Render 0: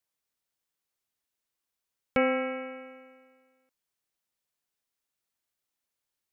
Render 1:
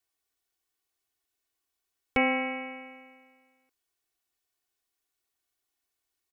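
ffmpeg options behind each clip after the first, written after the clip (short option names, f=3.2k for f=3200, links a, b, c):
-af "aecho=1:1:2.7:0.83"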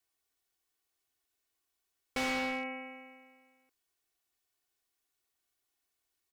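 -filter_complex "[0:a]asplit=2[a][b];[b]acrusher=bits=4:mix=0:aa=0.000001,volume=-11dB[c];[a][c]amix=inputs=2:normalize=0,volume=31dB,asoftclip=hard,volume=-31dB"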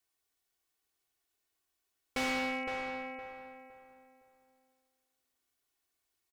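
-filter_complex "[0:a]asplit=2[a][b];[b]adelay=513,lowpass=f=2k:p=1,volume=-5dB,asplit=2[c][d];[d]adelay=513,lowpass=f=2k:p=1,volume=0.32,asplit=2[e][f];[f]adelay=513,lowpass=f=2k:p=1,volume=0.32,asplit=2[g][h];[h]adelay=513,lowpass=f=2k:p=1,volume=0.32[i];[a][c][e][g][i]amix=inputs=5:normalize=0"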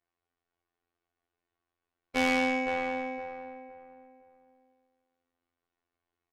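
-af "adynamicsmooth=sensitivity=6:basefreq=1.9k,afftfilt=real='hypot(re,im)*cos(PI*b)':imag='0':win_size=2048:overlap=0.75,volume=8.5dB"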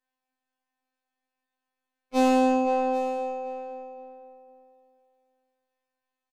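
-af "aecho=1:1:784:0.158,afftfilt=real='re*2.45*eq(mod(b,6),0)':imag='im*2.45*eq(mod(b,6),0)':win_size=2048:overlap=0.75,volume=2dB"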